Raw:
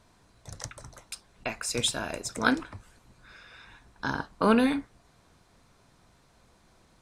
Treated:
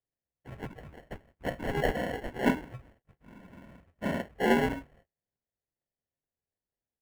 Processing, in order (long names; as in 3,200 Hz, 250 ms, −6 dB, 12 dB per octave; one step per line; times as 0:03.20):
partials spread apart or drawn together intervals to 75%
noise gate −57 dBFS, range −35 dB
comb filter 1.9 ms, depth 57%
decimation without filtering 36×
high shelf with overshoot 3,200 Hz −9.5 dB, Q 1.5